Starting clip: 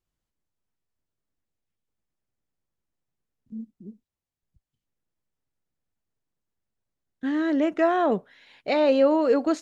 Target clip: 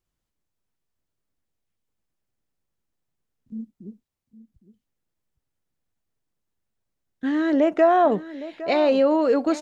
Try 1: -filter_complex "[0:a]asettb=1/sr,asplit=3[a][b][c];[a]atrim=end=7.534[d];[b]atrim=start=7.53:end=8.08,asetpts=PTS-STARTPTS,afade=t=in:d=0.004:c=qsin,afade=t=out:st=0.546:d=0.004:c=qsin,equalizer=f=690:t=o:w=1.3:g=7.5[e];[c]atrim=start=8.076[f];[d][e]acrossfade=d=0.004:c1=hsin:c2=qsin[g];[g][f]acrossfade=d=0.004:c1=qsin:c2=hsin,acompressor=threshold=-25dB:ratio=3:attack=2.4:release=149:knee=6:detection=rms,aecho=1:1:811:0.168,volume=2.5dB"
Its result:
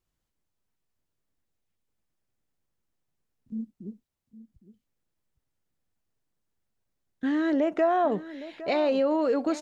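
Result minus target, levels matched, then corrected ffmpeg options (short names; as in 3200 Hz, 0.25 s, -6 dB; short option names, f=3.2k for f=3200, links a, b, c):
compressor: peak gain reduction +6.5 dB
-filter_complex "[0:a]asettb=1/sr,asplit=3[a][b][c];[a]atrim=end=7.534[d];[b]atrim=start=7.53:end=8.08,asetpts=PTS-STARTPTS,afade=t=in:d=0.004:c=qsin,afade=t=out:st=0.546:d=0.004:c=qsin,equalizer=f=690:t=o:w=1.3:g=7.5[e];[c]atrim=start=8.076[f];[d][e]acrossfade=d=0.004:c1=hsin:c2=qsin[g];[g][f]acrossfade=d=0.004:c1=qsin:c2=hsin,acompressor=threshold=-15dB:ratio=3:attack=2.4:release=149:knee=6:detection=rms,aecho=1:1:811:0.168,volume=2.5dB"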